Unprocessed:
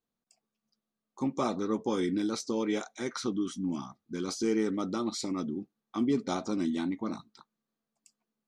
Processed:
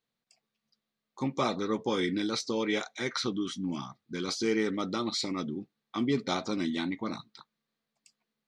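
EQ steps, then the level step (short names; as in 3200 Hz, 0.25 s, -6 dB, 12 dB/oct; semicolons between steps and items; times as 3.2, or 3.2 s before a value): ten-band EQ 125 Hz +9 dB, 500 Hz +5 dB, 1000 Hz +3 dB, 2000 Hz +10 dB, 4000 Hz +11 dB; -4.5 dB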